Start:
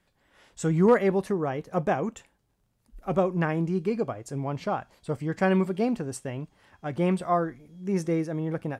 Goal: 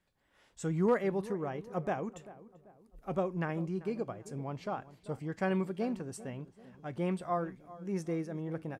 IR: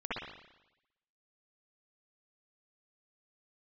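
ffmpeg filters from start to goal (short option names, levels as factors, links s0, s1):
-filter_complex "[0:a]asplit=2[s0][s1];[s1]adelay=390,lowpass=f=1400:p=1,volume=0.15,asplit=2[s2][s3];[s3]adelay=390,lowpass=f=1400:p=1,volume=0.43,asplit=2[s4][s5];[s5]adelay=390,lowpass=f=1400:p=1,volume=0.43,asplit=2[s6][s7];[s7]adelay=390,lowpass=f=1400:p=1,volume=0.43[s8];[s0][s2][s4][s6][s8]amix=inputs=5:normalize=0,volume=0.376"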